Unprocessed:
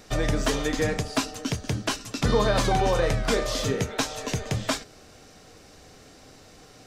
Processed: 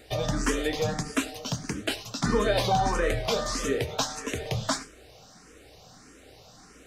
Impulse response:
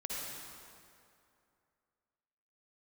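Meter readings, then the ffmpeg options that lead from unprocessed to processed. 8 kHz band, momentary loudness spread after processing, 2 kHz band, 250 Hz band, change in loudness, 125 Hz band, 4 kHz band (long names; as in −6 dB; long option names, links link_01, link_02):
−1.0 dB, 8 LU, −2.0 dB, −2.0 dB, −2.0 dB, −4.0 dB, −1.5 dB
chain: -filter_complex "[0:a]lowshelf=frequency=130:gain=-4.5,bandreject=frequency=49:width_type=h:width=4,bandreject=frequency=98:width_type=h:width=4,bandreject=frequency=147:width_type=h:width=4,aeval=exprs='val(0)+0.001*(sin(2*PI*60*n/s)+sin(2*PI*2*60*n/s)/2+sin(2*PI*3*60*n/s)/3+sin(2*PI*4*60*n/s)/4+sin(2*PI*5*60*n/s)/5)':channel_layout=same,asplit=2[link_01][link_02];[1:a]atrim=start_sample=2205,atrim=end_sample=4410,asetrate=37044,aresample=44100[link_03];[link_02][link_03]afir=irnorm=-1:irlink=0,volume=-10.5dB[link_04];[link_01][link_04]amix=inputs=2:normalize=0,asplit=2[link_05][link_06];[link_06]afreqshift=1.6[link_07];[link_05][link_07]amix=inputs=2:normalize=1"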